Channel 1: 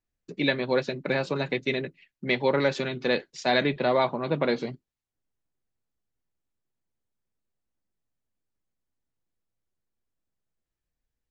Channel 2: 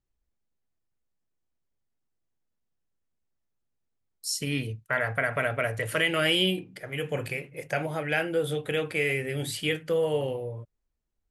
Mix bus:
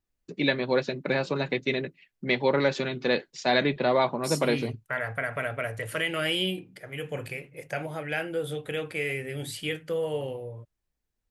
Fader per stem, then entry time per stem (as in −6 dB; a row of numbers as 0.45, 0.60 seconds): 0.0, −3.5 decibels; 0.00, 0.00 seconds